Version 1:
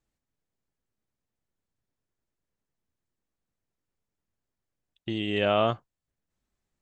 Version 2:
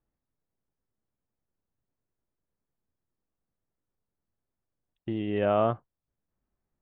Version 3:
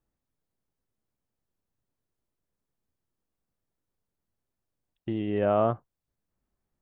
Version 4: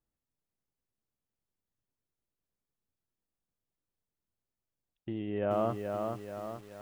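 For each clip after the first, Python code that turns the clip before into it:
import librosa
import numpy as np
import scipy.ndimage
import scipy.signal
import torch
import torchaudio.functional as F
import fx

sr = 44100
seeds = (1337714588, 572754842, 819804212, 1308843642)

y1 = scipy.signal.sosfilt(scipy.signal.butter(2, 1400.0, 'lowpass', fs=sr, output='sos'), x)
y2 = fx.dynamic_eq(y1, sr, hz=3100.0, q=0.86, threshold_db=-46.0, ratio=4.0, max_db=-6)
y2 = F.gain(torch.from_numpy(y2), 1.0).numpy()
y3 = fx.echo_crushed(y2, sr, ms=430, feedback_pct=55, bits=8, wet_db=-4.5)
y3 = F.gain(torch.from_numpy(y3), -6.5).numpy()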